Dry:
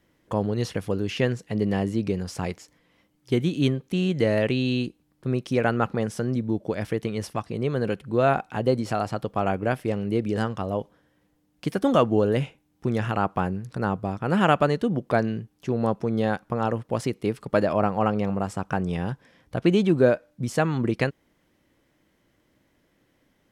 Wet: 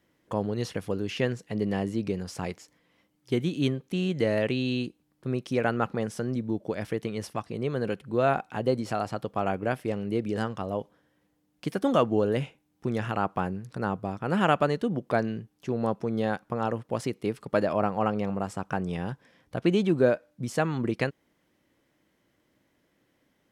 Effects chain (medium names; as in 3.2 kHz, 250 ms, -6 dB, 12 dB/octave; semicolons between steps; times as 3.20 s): bass shelf 60 Hz -11 dB; trim -3 dB